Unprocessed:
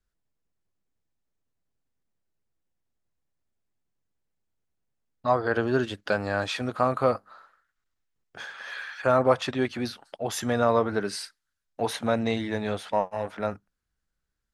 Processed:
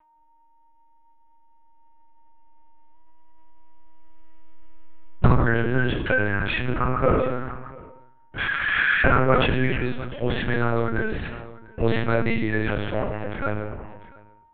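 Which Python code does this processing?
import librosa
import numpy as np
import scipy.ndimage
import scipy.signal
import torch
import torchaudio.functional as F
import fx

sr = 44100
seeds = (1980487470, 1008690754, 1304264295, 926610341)

y = fx.recorder_agc(x, sr, target_db=-14.0, rise_db_per_s=6.5, max_gain_db=30)
y = y + 10.0 ** (-48.0 / 20.0) * np.sin(2.0 * np.pi * 930.0 * np.arange(len(y)) / sr)
y = fx.fixed_phaser(y, sr, hz=1900.0, stages=4)
y = fx.hpss(y, sr, part='percussive', gain_db=9)
y = fx.highpass(y, sr, hz=160.0, slope=6, at=(9.66, 11.83))
y = fx.room_shoebox(y, sr, seeds[0], volume_m3=150.0, walls='mixed', distance_m=0.82)
y = fx.lpc_vocoder(y, sr, seeds[1], excitation='pitch_kept', order=8)
y = y + 10.0 ** (-23.5 / 20.0) * np.pad(y, (int(696 * sr / 1000.0), 0))[:len(y)]
y = fx.sustainer(y, sr, db_per_s=35.0)
y = y * 10.0 ** (-1.0 / 20.0)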